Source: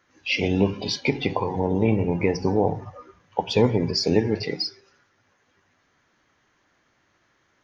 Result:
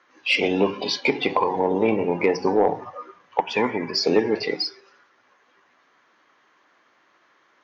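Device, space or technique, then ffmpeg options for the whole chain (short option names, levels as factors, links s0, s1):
intercom: -filter_complex "[0:a]asettb=1/sr,asplit=3[s0][s1][s2];[s0]atrim=end=3.404[s3];[s1]atrim=start=3.4:end=3.94,asetpts=PTS-STARTPTS,afade=t=in:d=0.004:c=qsin,afade=t=out:st=0.536:d=0.004:c=qsin,equalizer=f=125:t=o:w=1:g=-6,equalizer=f=500:t=o:w=1:g=-9,equalizer=f=2000:t=o:w=1:g=8,equalizer=f=4000:t=o:w=1:g=-12[s4];[s2]atrim=start=3.936[s5];[s3][s4]acrossfade=d=0.004:c1=hsin:c2=qsin[s6];[s6][s5]acrossfade=d=0.004:c1=qsin:c2=hsin,highpass=320,lowpass=4600,equalizer=f=1100:t=o:w=0.36:g=5.5,asoftclip=type=tanh:threshold=0.266,volume=1.78"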